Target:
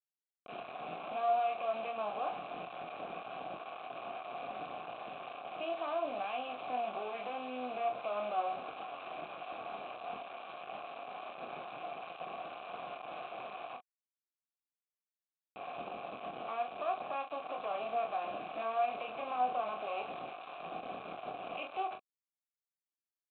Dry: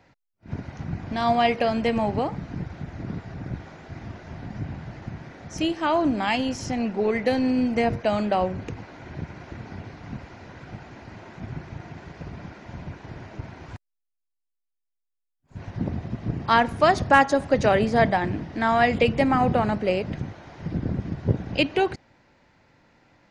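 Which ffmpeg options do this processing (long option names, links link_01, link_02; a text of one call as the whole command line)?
ffmpeg -i in.wav -filter_complex "[0:a]highpass=frequency=160:width=0.5412,highpass=frequency=160:width=1.3066,acompressor=threshold=-25dB:ratio=20,alimiter=level_in=2.5dB:limit=-24dB:level=0:latency=1:release=131,volume=-2.5dB,aresample=8000,acrusher=bits=4:dc=4:mix=0:aa=0.000001,aresample=44100,asplit=3[link_01][link_02][link_03];[link_01]bandpass=frequency=730:width_type=q:width=8,volume=0dB[link_04];[link_02]bandpass=frequency=1090:width_type=q:width=8,volume=-6dB[link_05];[link_03]bandpass=frequency=2440:width_type=q:width=8,volume=-9dB[link_06];[link_04][link_05][link_06]amix=inputs=3:normalize=0,asplit=2[link_07][link_08];[link_08]aecho=0:1:24|40:0.422|0.355[link_09];[link_07][link_09]amix=inputs=2:normalize=0,volume=11dB" out.wav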